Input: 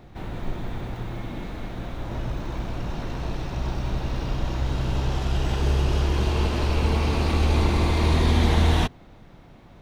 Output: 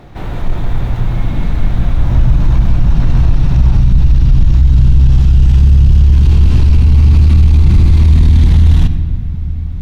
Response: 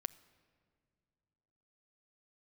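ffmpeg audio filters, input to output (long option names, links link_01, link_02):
-filter_complex "[0:a]asetnsamples=nb_out_samples=441:pad=0,asendcmd='3.81 equalizer g -4',equalizer=frequency=840:width=0.45:gain=2[link_01];[1:a]atrim=start_sample=2205[link_02];[link_01][link_02]afir=irnorm=-1:irlink=0,asoftclip=type=tanh:threshold=-22.5dB,asubboost=boost=10:cutoff=160,alimiter=level_in=11.5dB:limit=-1dB:release=50:level=0:latency=1" -ar 44100 -c:a libmp3lame -b:a 112k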